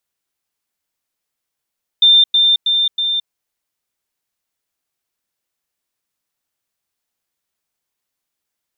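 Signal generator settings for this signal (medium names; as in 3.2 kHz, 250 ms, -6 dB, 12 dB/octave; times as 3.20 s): level ladder 3.59 kHz -6 dBFS, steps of -3 dB, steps 4, 0.22 s 0.10 s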